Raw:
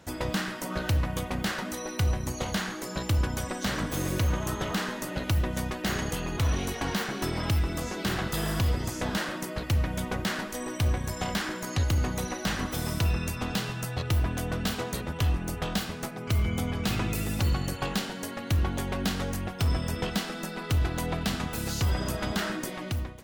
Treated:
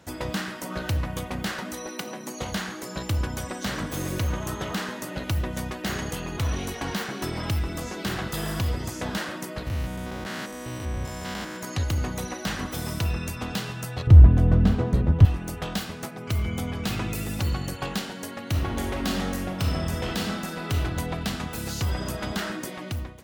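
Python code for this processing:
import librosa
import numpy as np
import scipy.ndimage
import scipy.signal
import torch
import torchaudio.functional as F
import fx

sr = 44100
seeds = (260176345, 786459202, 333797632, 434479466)

y = fx.steep_highpass(x, sr, hz=190.0, slope=36, at=(1.89, 2.41))
y = fx.spec_steps(y, sr, hold_ms=200, at=(9.64, 11.56), fade=0.02)
y = fx.tilt_eq(y, sr, slope=-4.5, at=(14.07, 15.25))
y = fx.reverb_throw(y, sr, start_s=18.5, length_s=2.31, rt60_s=1.0, drr_db=0.5)
y = scipy.signal.sosfilt(scipy.signal.butter(2, 44.0, 'highpass', fs=sr, output='sos'), y)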